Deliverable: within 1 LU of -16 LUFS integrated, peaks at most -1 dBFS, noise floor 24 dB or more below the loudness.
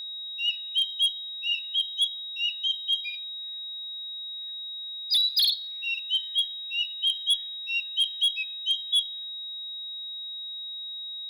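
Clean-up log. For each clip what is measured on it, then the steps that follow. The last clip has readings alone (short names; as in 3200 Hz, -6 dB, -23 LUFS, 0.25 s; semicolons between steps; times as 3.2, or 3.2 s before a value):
clipped 0.4%; flat tops at -18.5 dBFS; steady tone 3800 Hz; tone level -34 dBFS; loudness -27.0 LUFS; peak -18.5 dBFS; loudness target -16.0 LUFS
-> clip repair -18.5 dBFS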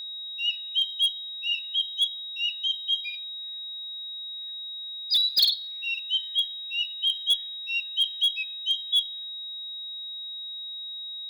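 clipped 0.0%; steady tone 3800 Hz; tone level -34 dBFS
-> notch 3800 Hz, Q 30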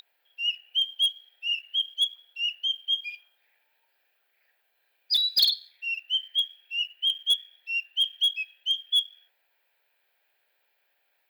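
steady tone none; loudness -25.5 LUFS; peak -9.5 dBFS; loudness target -16.0 LUFS
-> gain +9.5 dB; limiter -1 dBFS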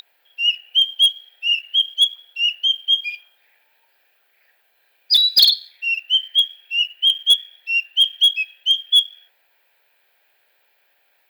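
loudness -16.0 LUFS; peak -1.0 dBFS; noise floor -63 dBFS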